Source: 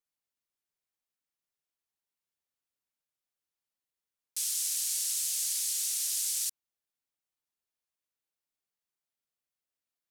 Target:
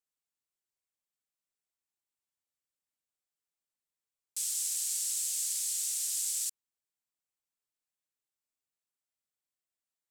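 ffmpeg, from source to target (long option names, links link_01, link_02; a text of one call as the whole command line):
ffmpeg -i in.wav -af "equalizer=frequency=7800:width=3.1:gain=6.5,volume=-4.5dB" out.wav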